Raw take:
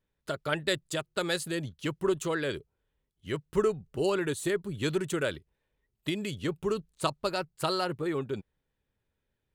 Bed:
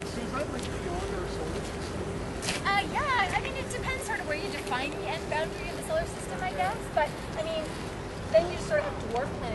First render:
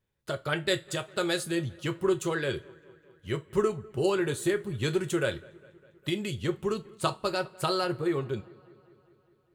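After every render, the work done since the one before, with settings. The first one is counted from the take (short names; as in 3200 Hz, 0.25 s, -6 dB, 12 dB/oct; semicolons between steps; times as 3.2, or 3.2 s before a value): dark delay 0.202 s, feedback 66%, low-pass 2500 Hz, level -24 dB; two-slope reverb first 0.21 s, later 1.6 s, from -28 dB, DRR 6.5 dB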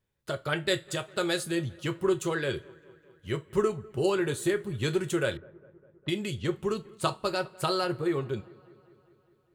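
5.37–6.63 low-pass opened by the level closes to 870 Hz, open at -28.5 dBFS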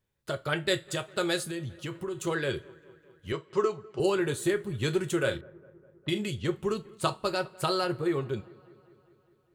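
1.44–2.27 compressor 4:1, threshold -32 dBFS; 3.32–4 speaker cabinet 200–6900 Hz, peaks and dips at 230 Hz -8 dB, 1100 Hz +4 dB, 1800 Hz -4 dB, 4800 Hz +7 dB; 5.17–6.28 doubler 38 ms -9 dB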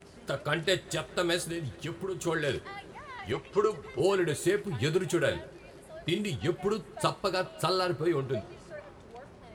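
add bed -17 dB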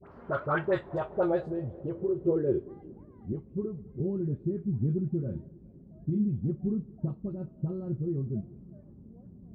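low-pass sweep 1200 Hz -> 210 Hz, 0.44–3.54; dispersion highs, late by 54 ms, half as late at 1200 Hz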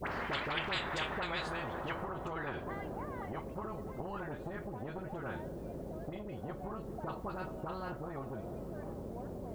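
compressor, threshold -30 dBFS, peak gain reduction 9 dB; spectral compressor 10:1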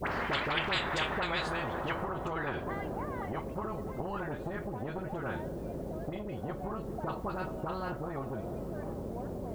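gain +4.5 dB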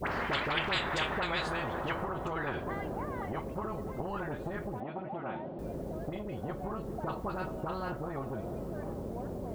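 4.8–5.59 speaker cabinet 180–3200 Hz, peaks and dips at 450 Hz -8 dB, 750 Hz +5 dB, 1600 Hz -8 dB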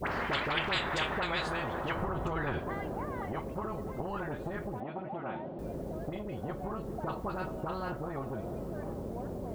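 1.96–2.59 low shelf 160 Hz +8 dB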